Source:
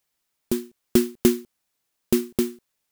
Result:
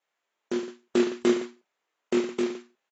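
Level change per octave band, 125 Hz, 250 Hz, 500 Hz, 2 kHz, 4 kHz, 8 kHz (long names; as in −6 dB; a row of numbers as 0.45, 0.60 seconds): −13.0, −4.0, −0.5, +2.5, −2.5, −10.0 decibels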